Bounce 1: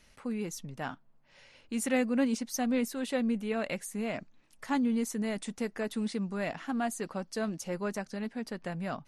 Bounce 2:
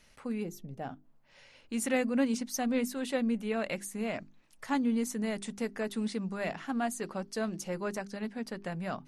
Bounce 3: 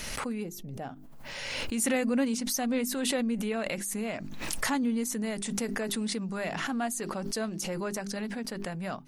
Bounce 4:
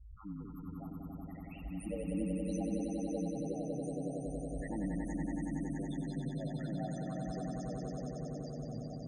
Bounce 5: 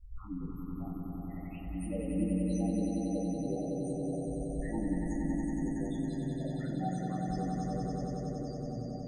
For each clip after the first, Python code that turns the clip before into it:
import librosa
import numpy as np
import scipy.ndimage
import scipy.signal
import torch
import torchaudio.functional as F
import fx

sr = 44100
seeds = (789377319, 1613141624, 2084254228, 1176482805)

y1 = fx.spec_box(x, sr, start_s=0.44, length_s=0.6, low_hz=820.0, high_hz=12000.0, gain_db=-10)
y1 = fx.hum_notches(y1, sr, base_hz=50, count=8)
y2 = fx.high_shelf(y1, sr, hz=6000.0, db=7.0)
y2 = fx.pre_swell(y2, sr, db_per_s=24.0)
y3 = fx.spec_topn(y2, sr, count=2)
y3 = y3 * np.sin(2.0 * np.pi * 52.0 * np.arange(len(y3)) / sr)
y3 = fx.echo_swell(y3, sr, ms=93, loudest=5, wet_db=-5.0)
y3 = y3 * librosa.db_to_amplitude(-5.5)
y4 = fx.room_shoebox(y3, sr, seeds[0], volume_m3=120.0, walls='furnished', distance_m=3.2)
y4 = y4 * librosa.db_to_amplitude(-5.0)